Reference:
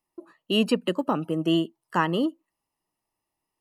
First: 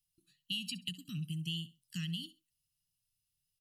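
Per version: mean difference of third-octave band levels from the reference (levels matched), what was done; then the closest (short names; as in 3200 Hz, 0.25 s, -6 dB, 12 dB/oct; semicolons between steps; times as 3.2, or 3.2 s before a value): 13.5 dB: elliptic band-stop 140–3200 Hz, stop band 70 dB; compressor 10:1, threshold -37 dBFS, peak gain reduction 10.5 dB; on a send: feedback echo 66 ms, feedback 25%, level -18.5 dB; on the sum: gain +2.5 dB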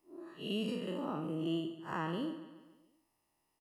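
7.5 dB: time blur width 0.137 s; compressor 2:1, threshold -50 dBFS, peak gain reduction 15.5 dB; on a send: feedback echo 0.141 s, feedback 50%, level -13.5 dB; on the sum: gain +4.5 dB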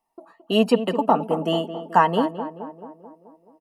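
5.0 dB: bell 770 Hz +14 dB 0.9 oct; comb 4.4 ms, depth 51%; on a send: tape echo 0.216 s, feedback 66%, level -9.5 dB, low-pass 1300 Hz; on the sum: gain -1 dB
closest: third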